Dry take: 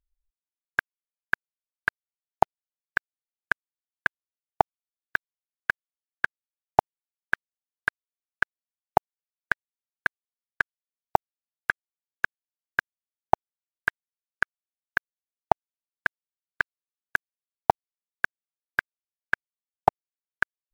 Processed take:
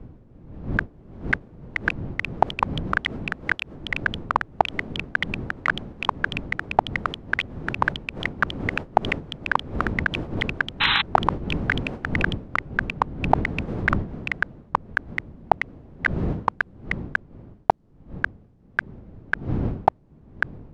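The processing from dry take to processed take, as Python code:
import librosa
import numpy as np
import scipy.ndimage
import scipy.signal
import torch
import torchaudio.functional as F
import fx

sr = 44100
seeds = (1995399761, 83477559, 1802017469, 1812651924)

p1 = fx.dmg_wind(x, sr, seeds[0], corner_hz=200.0, level_db=-44.0)
p2 = scipy.signal.sosfilt(scipy.signal.butter(2, 5600.0, 'lowpass', fs=sr, output='sos'), p1)
p3 = fx.over_compress(p2, sr, threshold_db=-33.0, ratio=-0.5)
p4 = p2 + F.gain(torch.from_numpy(p3), -1.0).numpy()
p5 = fx.echo_pitch(p4, sr, ms=703, semitones=4, count=3, db_per_echo=-3.0)
p6 = fx.spec_paint(p5, sr, seeds[1], shape='noise', start_s=10.8, length_s=0.22, low_hz=790.0, high_hz=4100.0, level_db=-22.0)
y = F.gain(torch.from_numpy(p6), 1.5).numpy()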